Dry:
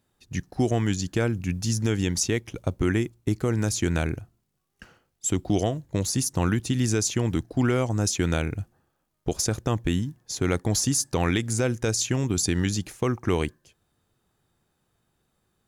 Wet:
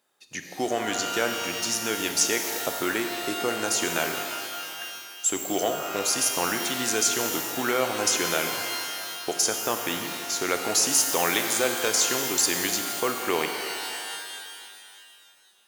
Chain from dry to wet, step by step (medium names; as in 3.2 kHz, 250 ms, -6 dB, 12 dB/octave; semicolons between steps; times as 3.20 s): high-pass 510 Hz 12 dB/octave; pitch-shifted reverb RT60 2.3 s, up +12 st, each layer -2 dB, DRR 5.5 dB; trim +3.5 dB